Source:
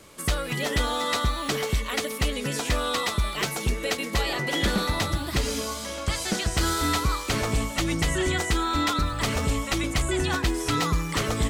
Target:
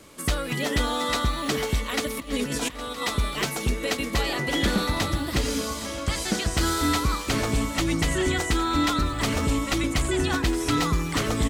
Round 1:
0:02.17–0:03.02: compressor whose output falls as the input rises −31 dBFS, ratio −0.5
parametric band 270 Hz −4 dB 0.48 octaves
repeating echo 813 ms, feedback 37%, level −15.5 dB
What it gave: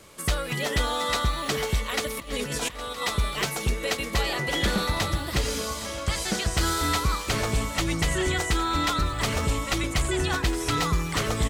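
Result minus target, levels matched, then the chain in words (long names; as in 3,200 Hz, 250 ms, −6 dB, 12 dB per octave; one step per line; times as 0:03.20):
250 Hz band −4.0 dB
0:02.17–0:03.02: compressor whose output falls as the input rises −31 dBFS, ratio −0.5
parametric band 270 Hz +5.5 dB 0.48 octaves
repeating echo 813 ms, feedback 37%, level −15.5 dB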